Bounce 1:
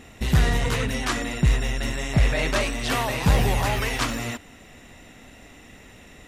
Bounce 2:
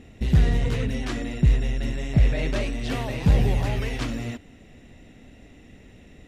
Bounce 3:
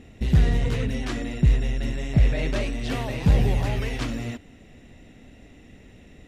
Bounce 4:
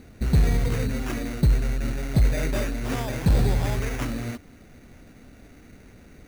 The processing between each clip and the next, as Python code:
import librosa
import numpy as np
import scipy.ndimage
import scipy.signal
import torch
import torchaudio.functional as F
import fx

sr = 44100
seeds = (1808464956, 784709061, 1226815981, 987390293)

y1 = fx.lowpass(x, sr, hz=1700.0, slope=6)
y1 = fx.peak_eq(y1, sr, hz=1100.0, db=-11.5, octaves=1.6)
y1 = y1 * librosa.db_to_amplitude(1.5)
y2 = y1
y3 = fx.sample_hold(y2, sr, seeds[0], rate_hz=4200.0, jitter_pct=0)
y3 = np.clip(y3, -10.0 ** (-13.0 / 20.0), 10.0 ** (-13.0 / 20.0))